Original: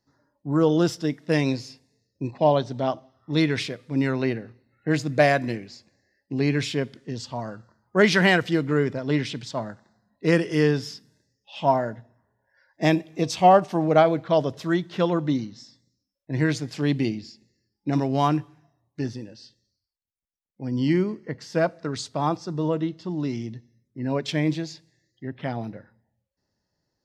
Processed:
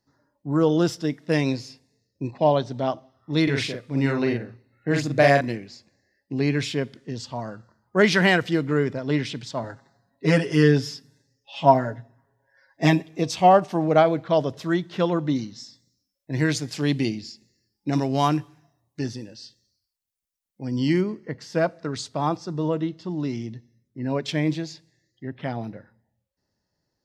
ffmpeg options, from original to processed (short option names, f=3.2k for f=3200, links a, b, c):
-filter_complex "[0:a]asettb=1/sr,asplit=3[a][b][c];[a]atrim=end=3.434[d];[b]atrim=start=3.43:end=5.41,asetpts=PTS-STARTPTS,afade=t=in:d=0.004:c=qsin,afade=t=out:st=1.976:d=0.004:c=qsin,asplit=2[e][f];[f]adelay=43,volume=-3dB[g];[e][g]amix=inputs=2:normalize=0,atrim=end_sample=87318[h];[c]atrim=start=5.406[i];[d][h]acrossfade=d=0.004:c1=hsin:c2=qsin[j];[j][i]acrossfade=d=0.004:c1=qsin:c2=hsin,asettb=1/sr,asplit=3[k][l][m];[k]atrim=end=9.634[n];[l]atrim=start=9.63:end=13.09,asetpts=PTS-STARTPTS,afade=t=in:d=0.004:c=qsin,afade=t=out:st=3.456:d=0.004:c=qsin,aecho=1:1:7.3:0.89,atrim=end_sample=152586[o];[m]atrim=start=13.086[p];[n][o]acrossfade=d=0.004:c1=hsin:c2=qsin[q];[q][p]acrossfade=d=0.004:c1=qsin:c2=hsin,asettb=1/sr,asplit=3[r][s][t];[r]atrim=end=15.364[u];[s]atrim=start=15.36:end=21.01,asetpts=PTS-STARTPTS,afade=t=in:d=0.004:c=qsin,afade=t=out:st=5.646:d=0.004:c=qsin,highshelf=f=3.9k:g=8.5[v];[t]atrim=start=21.006[w];[u][v]acrossfade=d=0.004:c1=hsin:c2=qsin[x];[x][w]acrossfade=d=0.004:c1=qsin:c2=hsin"